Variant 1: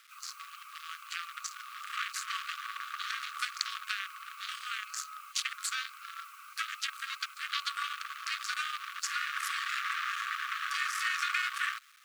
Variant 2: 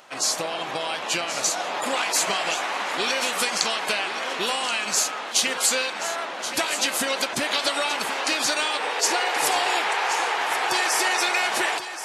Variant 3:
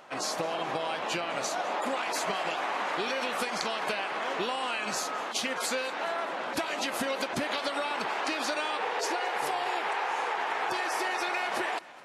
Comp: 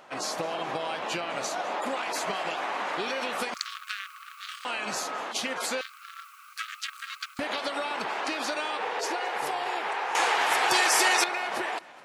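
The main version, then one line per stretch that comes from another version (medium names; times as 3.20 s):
3
3.54–4.65 s: from 1
5.81–7.39 s: from 1
10.15–11.24 s: from 2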